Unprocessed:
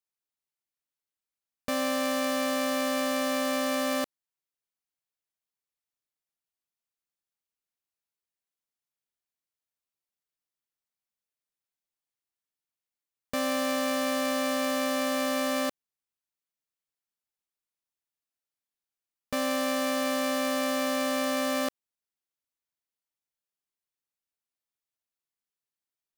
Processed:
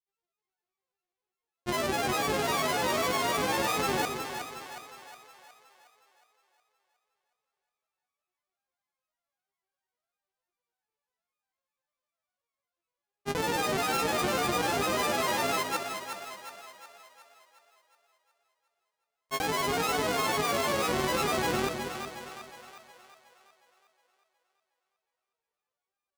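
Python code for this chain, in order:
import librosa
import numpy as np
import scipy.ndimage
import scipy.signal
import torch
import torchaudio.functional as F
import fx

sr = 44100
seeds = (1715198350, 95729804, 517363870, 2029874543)

y = np.r_[np.sort(x[:len(x) // 64 * 64].reshape(-1, 64), axis=1).ravel(), x[len(x) // 64 * 64:]]
y = fx.granulator(y, sr, seeds[0], grain_ms=100.0, per_s=20.0, spray_ms=100.0, spread_st=12)
y = fx.echo_split(y, sr, split_hz=540.0, low_ms=206, high_ms=364, feedback_pct=52, wet_db=-7)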